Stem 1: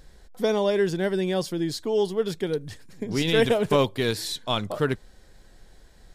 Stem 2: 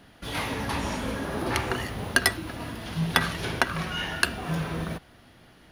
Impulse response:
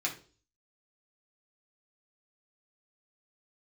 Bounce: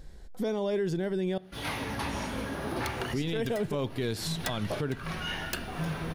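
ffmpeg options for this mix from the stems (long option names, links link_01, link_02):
-filter_complex "[0:a]lowshelf=frequency=480:gain=7.5,volume=-4dB,asplit=3[link_01][link_02][link_03];[link_01]atrim=end=1.38,asetpts=PTS-STARTPTS,afade=type=out:start_time=1.376:duration=0.004:curve=hsin[link_04];[link_02]atrim=start=1.38:end=3.13,asetpts=PTS-STARTPTS,volume=0[link_05];[link_03]atrim=start=3.13,asetpts=PTS-STARTPTS,afade=type=in:duration=0.004:curve=hsin[link_06];[link_04][link_05][link_06]concat=n=3:v=0:a=1,asplit=3[link_07][link_08][link_09];[link_08]volume=-20dB[link_10];[1:a]bandreject=frequency=7200:width=14,aeval=exprs='0.141*(abs(mod(val(0)/0.141+3,4)-2)-1)':channel_layout=same,adelay=1300,volume=-4.5dB,asplit=2[link_11][link_12];[link_12]volume=-18dB[link_13];[link_09]apad=whole_len=309203[link_14];[link_11][link_14]sidechaincompress=threshold=-26dB:ratio=8:attack=6.6:release=324[link_15];[2:a]atrim=start_sample=2205[link_16];[link_10][link_13]amix=inputs=2:normalize=0[link_17];[link_17][link_16]afir=irnorm=-1:irlink=0[link_18];[link_07][link_15][link_18]amix=inputs=3:normalize=0,alimiter=limit=-22dB:level=0:latency=1:release=144"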